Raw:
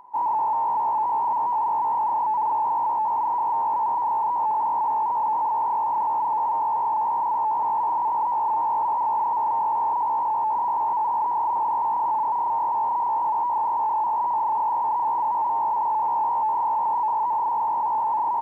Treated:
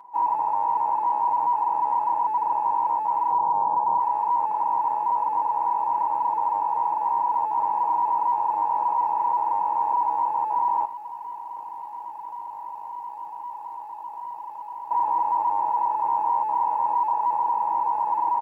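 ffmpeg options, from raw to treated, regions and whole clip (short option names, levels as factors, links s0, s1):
-filter_complex "[0:a]asettb=1/sr,asplit=3[s0][s1][s2];[s0]atrim=end=3.314[s3];[s1]atrim=start=3.31:end=4,asetpts=PTS-STARTPTS,afade=t=in:d=0.004:c=qsin,afade=t=out:st=0.686:d=0.004:c=qsin,lowpass=f=1300:w=0.5412,lowpass=f=1300:w=1.3066,lowshelf=f=340:g=11,bandreject=f=320:w=8.4[s4];[s2]atrim=start=3.996[s5];[s3][s4]acrossfade=d=0.004:c1=hsin:c2=qsin[s6];[s6][s5]acrossfade=d=0.004:c1=qsin:c2=hsin,asettb=1/sr,asplit=3[s7][s8][s9];[s7]atrim=end=10.854[s10];[s8]atrim=start=10.85:end=14.91,asetpts=PTS-STARTPTS,afade=t=in:d=0.004:c=qsin,afade=t=out:st=4.056:d=0.004:c=qsin,lowshelf=f=460:g=-10.5,tremolo=f=53:d=0.667,acrossover=split=280|3000[s11][s12][s13];[s12]acompressor=threshold=0.0178:ratio=4:attack=3.2:release=140:knee=2.83:detection=peak[s14];[s11][s14][s13]amix=inputs=3:normalize=0[s15];[s9]atrim=start=14.906[s16];[s10][s15]acrossfade=d=0.004:c1=hsin:c2=qsin[s17];[s17][s16]acrossfade=d=0.004:c1=qsin:c2=hsin,highpass=f=220:p=1,aecho=1:1:6.2:0.92,volume=0.794"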